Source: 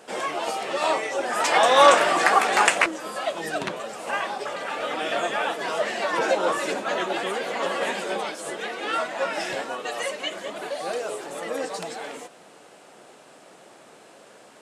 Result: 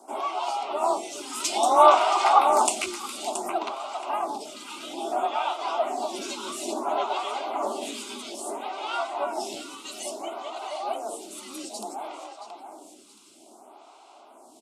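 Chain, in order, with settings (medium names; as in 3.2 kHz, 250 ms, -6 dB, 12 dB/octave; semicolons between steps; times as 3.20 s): static phaser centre 460 Hz, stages 6; frequency shift +36 Hz; on a send: feedback delay 675 ms, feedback 25%, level -8.5 dB; on the sum: lamp-driven phase shifter 0.59 Hz; trim +3 dB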